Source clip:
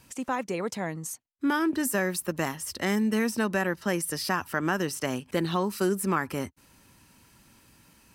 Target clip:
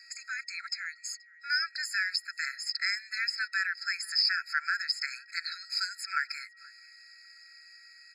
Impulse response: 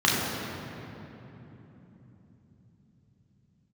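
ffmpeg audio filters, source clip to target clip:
-filter_complex "[0:a]aeval=exprs='val(0)+0.00141*sin(2*PI*1900*n/s)':c=same,lowpass=f=5.3k:t=q:w=11,bandreject=f=4k:w=18,asplit=2[a][b];[b]adelay=478.1,volume=-23dB,highshelf=f=4k:g=-10.8[c];[a][c]amix=inputs=2:normalize=0,acrossover=split=3300[d][e];[e]alimiter=limit=-19dB:level=0:latency=1:release=189[f];[d][f]amix=inputs=2:normalize=0,afftfilt=real='re*eq(mod(floor(b*sr/1024/1300),2),1)':imag='im*eq(mod(floor(b*sr/1024/1300),2),1)':win_size=1024:overlap=0.75,volume=1.5dB"

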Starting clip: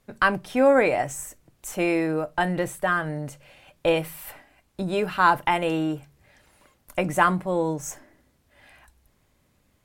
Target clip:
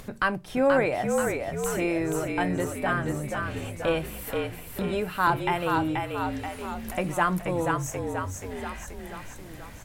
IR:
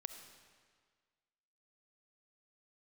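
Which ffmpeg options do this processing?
-filter_complex "[0:a]acompressor=mode=upward:threshold=-24dB:ratio=2.5,lowshelf=f=200:g=4,asplit=9[a][b][c][d][e][f][g][h][i];[b]adelay=481,afreqshift=-45,volume=-4dB[j];[c]adelay=962,afreqshift=-90,volume=-8.9dB[k];[d]adelay=1443,afreqshift=-135,volume=-13.8dB[l];[e]adelay=1924,afreqshift=-180,volume=-18.6dB[m];[f]adelay=2405,afreqshift=-225,volume=-23.5dB[n];[g]adelay=2886,afreqshift=-270,volume=-28.4dB[o];[h]adelay=3367,afreqshift=-315,volume=-33.3dB[p];[i]adelay=3848,afreqshift=-360,volume=-38.2dB[q];[a][j][k][l][m][n][o][p][q]amix=inputs=9:normalize=0,volume=-5dB"

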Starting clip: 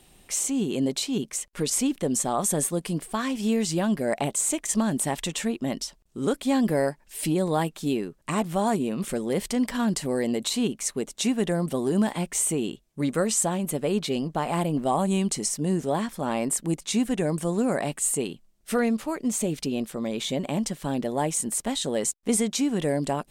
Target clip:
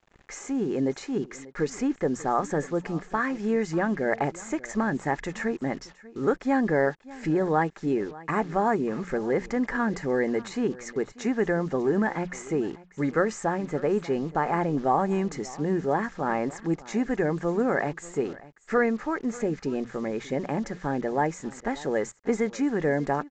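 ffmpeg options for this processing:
-filter_complex "[0:a]highshelf=f=2.4k:t=q:w=3:g=-10.5,bandreject=f=60:t=h:w=6,bandreject=f=120:t=h:w=6,bandreject=f=180:t=h:w=6,aecho=1:1:2.4:0.33,acrusher=bits=7:mix=0:aa=0.5,asplit=2[a][b];[b]aecho=0:1:590:0.106[c];[a][c]amix=inputs=2:normalize=0,aresample=16000,aresample=44100"

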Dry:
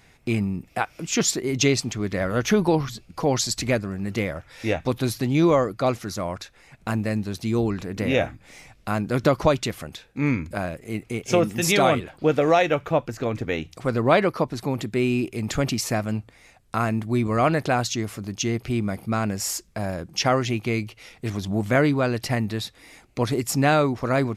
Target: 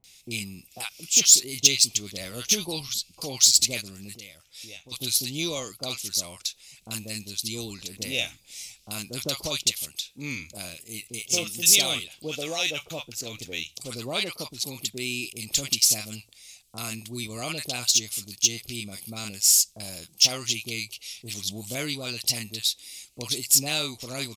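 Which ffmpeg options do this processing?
-filter_complex "[0:a]acrossover=split=920[a][b];[b]adelay=40[c];[a][c]amix=inputs=2:normalize=0,asplit=3[d][e][f];[d]afade=t=out:st=4.15:d=0.02[g];[e]acompressor=threshold=-45dB:ratio=2,afade=t=in:st=4.15:d=0.02,afade=t=out:st=4.91:d=0.02[h];[f]afade=t=in:st=4.91:d=0.02[i];[g][h][i]amix=inputs=3:normalize=0,aexciter=amount=7.9:drive=9.2:freq=2.6k,volume=-14dB"

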